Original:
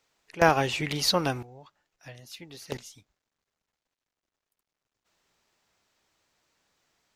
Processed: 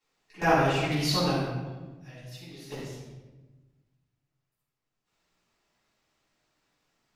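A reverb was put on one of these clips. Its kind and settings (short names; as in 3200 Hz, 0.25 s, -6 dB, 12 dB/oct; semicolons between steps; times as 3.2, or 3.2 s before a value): shoebox room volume 740 m³, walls mixed, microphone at 9.4 m; gain -17 dB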